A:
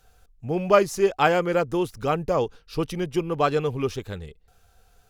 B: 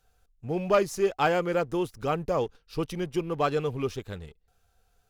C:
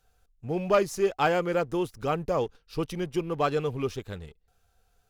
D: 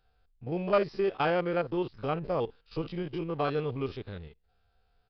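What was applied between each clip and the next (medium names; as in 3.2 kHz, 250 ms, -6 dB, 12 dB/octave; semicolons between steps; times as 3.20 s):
waveshaping leveller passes 1; trim -7.5 dB
no audible change
spectrogram pixelated in time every 50 ms; resampled via 11.025 kHz; trim -1.5 dB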